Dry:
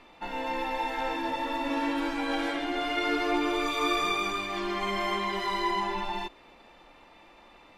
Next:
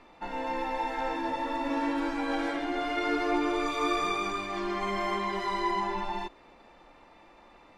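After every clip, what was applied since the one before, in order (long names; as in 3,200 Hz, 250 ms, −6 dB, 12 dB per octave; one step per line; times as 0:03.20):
Bessel low-pass filter 7,900 Hz, order 2
parametric band 3,100 Hz −6 dB 0.98 octaves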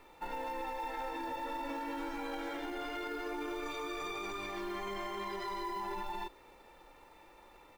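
comb filter 2.2 ms, depth 43%
brickwall limiter −27.5 dBFS, peak gain reduction 11 dB
log-companded quantiser 6 bits
level −4 dB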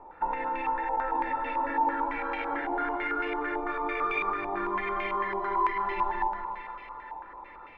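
high-frequency loss of the air 63 metres
echo with a time of its own for lows and highs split 840 Hz, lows 175 ms, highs 471 ms, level −6 dB
low-pass on a step sequencer 9 Hz 860–2,400 Hz
level +4 dB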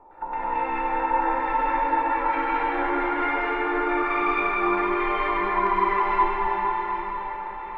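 convolution reverb RT60 4.5 s, pre-delay 93 ms, DRR −9 dB
level −3 dB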